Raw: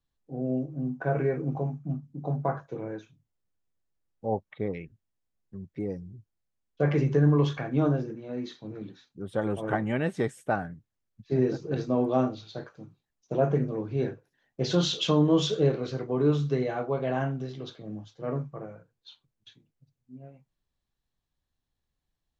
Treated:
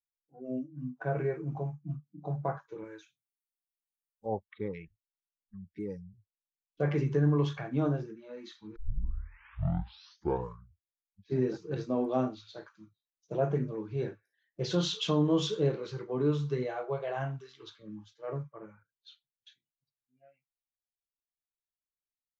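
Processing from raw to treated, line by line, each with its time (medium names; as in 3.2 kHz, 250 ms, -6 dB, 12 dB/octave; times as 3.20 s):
2.84–4.26 s: tilt shelf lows -6 dB, about 1.4 kHz
8.76 s: tape start 2.59 s
13.85–17.36 s: band-passed feedback delay 87 ms, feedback 67%, level -21 dB
whole clip: spectral noise reduction 25 dB; trim -4.5 dB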